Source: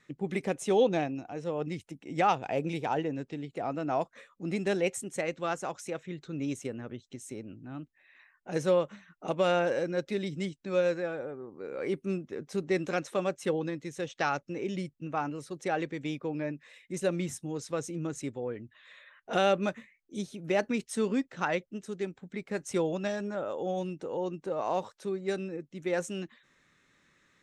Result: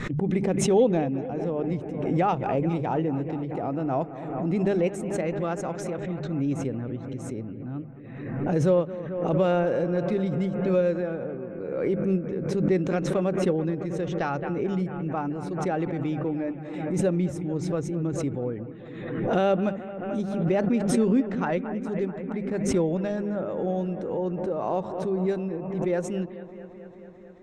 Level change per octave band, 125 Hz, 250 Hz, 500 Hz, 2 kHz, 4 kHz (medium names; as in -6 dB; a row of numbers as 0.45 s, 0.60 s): +10.5 dB, +8.5 dB, +5.0 dB, -1.0 dB, -2.5 dB